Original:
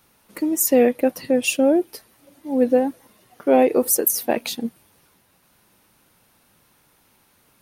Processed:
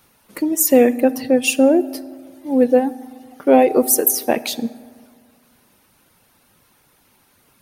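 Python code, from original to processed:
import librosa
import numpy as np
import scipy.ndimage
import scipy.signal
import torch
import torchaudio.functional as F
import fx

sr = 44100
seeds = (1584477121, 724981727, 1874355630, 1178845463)

y = fx.dereverb_blind(x, sr, rt60_s=0.52)
y = fx.rev_fdn(y, sr, rt60_s=1.9, lf_ratio=1.0, hf_ratio=0.45, size_ms=23.0, drr_db=14.5)
y = F.gain(torch.from_numpy(y), 3.5).numpy()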